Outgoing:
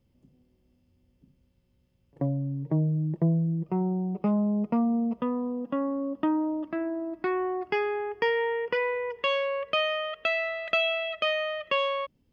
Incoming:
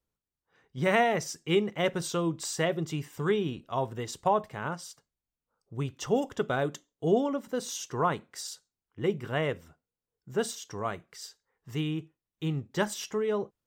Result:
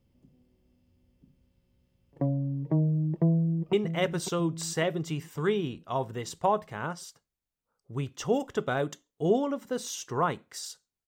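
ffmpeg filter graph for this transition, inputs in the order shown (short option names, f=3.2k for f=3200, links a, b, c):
-filter_complex "[0:a]apad=whole_dur=11.07,atrim=end=11.07,atrim=end=3.732[a];[1:a]atrim=start=1.548:end=8.89[b];[a][b]acrossfade=d=0.004:c1=hsin:c2=hsin,asplit=2[c][d];[d]afade=t=in:st=3.29:d=0.01,afade=t=out:st=3.73:d=0.01,aecho=0:1:550|1100|1650|2200|2750|3300:0.398107|0.199054|0.0995268|0.0497634|0.0248817|0.0124408[e];[c][e]amix=inputs=2:normalize=0"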